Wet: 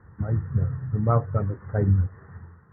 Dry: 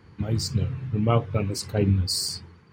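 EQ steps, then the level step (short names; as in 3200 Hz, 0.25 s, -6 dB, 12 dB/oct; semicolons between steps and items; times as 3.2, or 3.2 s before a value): rippled Chebyshev low-pass 1900 Hz, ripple 3 dB; air absorption 490 m; bell 320 Hz -11.5 dB 2.1 oct; +8.0 dB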